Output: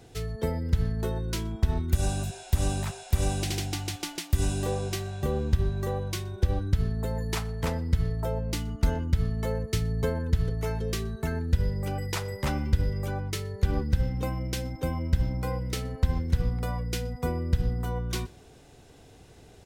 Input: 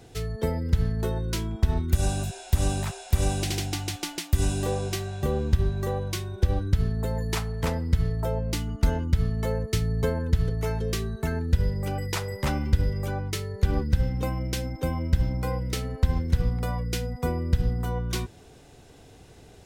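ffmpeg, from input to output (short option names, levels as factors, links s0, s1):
-filter_complex "[0:a]asplit=2[s0][s1];[s1]adelay=122.4,volume=0.0562,highshelf=f=4000:g=-2.76[s2];[s0][s2]amix=inputs=2:normalize=0,volume=0.794"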